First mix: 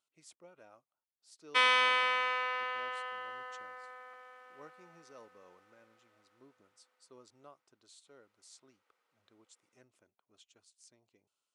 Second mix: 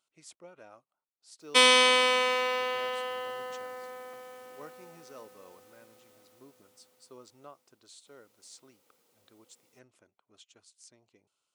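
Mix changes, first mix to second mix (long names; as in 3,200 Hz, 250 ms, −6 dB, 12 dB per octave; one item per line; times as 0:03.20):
speech +6.0 dB
background: remove resonant band-pass 1,500 Hz, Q 1.6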